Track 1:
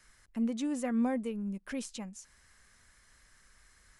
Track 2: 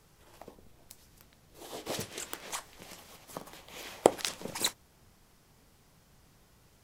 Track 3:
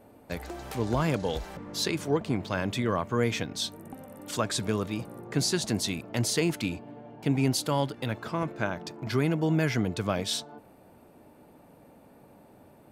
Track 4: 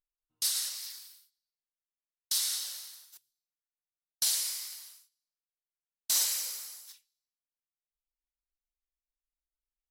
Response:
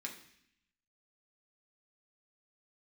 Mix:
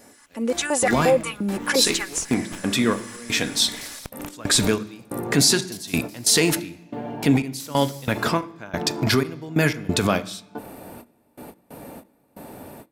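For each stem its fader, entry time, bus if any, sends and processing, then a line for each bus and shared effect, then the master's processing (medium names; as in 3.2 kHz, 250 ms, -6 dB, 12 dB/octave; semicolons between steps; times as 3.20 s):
+2.5 dB, 0.00 s, bus A, no send, treble shelf 4.1 kHz +9 dB; comb 3.5 ms, depth 73%; step-sequenced high-pass 5.7 Hz 330–2000 Hz
+2.0 dB, 0.00 s, bus B, no send, steep high-pass 2.2 kHz; sliding maximum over 9 samples
+1.0 dB, 0.00 s, bus A, send -4.5 dB, treble shelf 5.7 kHz +7.5 dB; trance gate "x..x.xx..xx" 91 bpm -24 dB; endings held to a fixed fall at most 380 dB/s; auto duck -9 dB, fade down 0.55 s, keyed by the first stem
-15.0 dB, 1.50 s, bus B, no send, none
bus A: 0.0 dB, level rider gain up to 5.5 dB; peak limiter -18 dBFS, peak gain reduction 11 dB
bus B: 0.0 dB, trance gate ".xxxxxx.x.xxxxxx" 143 bpm -12 dB; compression 10:1, threshold -41 dBFS, peak gain reduction 19 dB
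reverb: on, RT60 0.70 s, pre-delay 3 ms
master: level rider gain up to 7.5 dB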